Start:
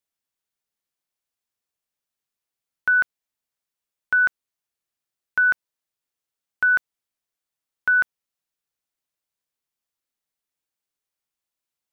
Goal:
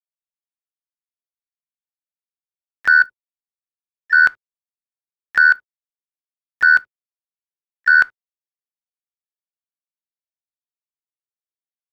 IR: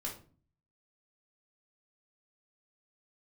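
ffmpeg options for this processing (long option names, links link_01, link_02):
-filter_complex "[0:a]highshelf=frequency=2300:gain=10.5,bandreject=frequency=60:width_type=h:width=6,bandreject=frequency=120:width_type=h:width=6,bandreject=frequency=180:width_type=h:width=6,bandreject=frequency=240:width_type=h:width=6,bandreject=frequency=300:width_type=h:width=6,bandreject=frequency=360:width_type=h:width=6,acontrast=65,aeval=exprs='val(0)*gte(abs(val(0)),0.00562)':channel_layout=same,tremolo=f=78:d=0.857,asplit=2[link_01][link_02];[link_02]asetrate=52444,aresample=44100,atempo=0.840896,volume=-16dB[link_03];[link_01][link_03]amix=inputs=2:normalize=0,asplit=2[link_04][link_05];[1:a]atrim=start_sample=2205,atrim=end_sample=3528[link_06];[link_05][link_06]afir=irnorm=-1:irlink=0,volume=-17.5dB[link_07];[link_04][link_07]amix=inputs=2:normalize=0"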